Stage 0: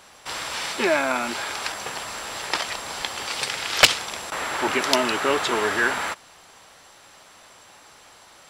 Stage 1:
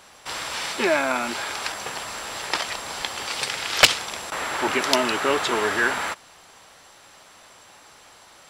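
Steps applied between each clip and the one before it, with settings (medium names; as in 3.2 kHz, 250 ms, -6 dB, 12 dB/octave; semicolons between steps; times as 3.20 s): no audible change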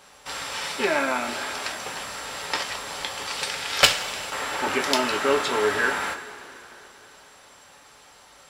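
two-slope reverb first 0.22 s, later 3.3 s, from -18 dB, DRR 2 dB; trim -3.5 dB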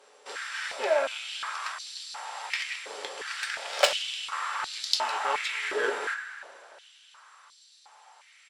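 resampled via 22.05 kHz; Chebyshev shaper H 8 -22 dB, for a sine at -1 dBFS; step-sequenced high-pass 2.8 Hz 430–4200 Hz; trim -8.5 dB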